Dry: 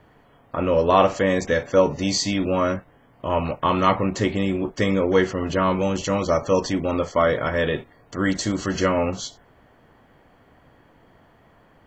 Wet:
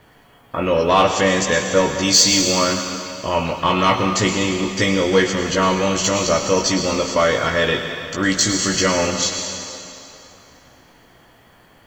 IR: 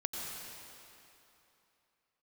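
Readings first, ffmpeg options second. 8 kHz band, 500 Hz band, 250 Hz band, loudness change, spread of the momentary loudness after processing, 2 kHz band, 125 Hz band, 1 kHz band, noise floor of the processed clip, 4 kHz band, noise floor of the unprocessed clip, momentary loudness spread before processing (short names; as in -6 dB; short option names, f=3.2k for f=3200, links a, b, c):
+15.0 dB, +2.0 dB, +2.5 dB, +4.5 dB, 10 LU, +7.0 dB, +2.0 dB, +3.5 dB, -51 dBFS, +12.0 dB, -56 dBFS, 7 LU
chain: -filter_complex "[0:a]highshelf=f=2.3k:g=10.5,acontrast=48,asplit=2[a][b];[1:a]atrim=start_sample=2205,highshelf=f=2.4k:g=11,adelay=17[c];[b][c]afir=irnorm=-1:irlink=0,volume=-9dB[d];[a][d]amix=inputs=2:normalize=0,volume=-4.5dB"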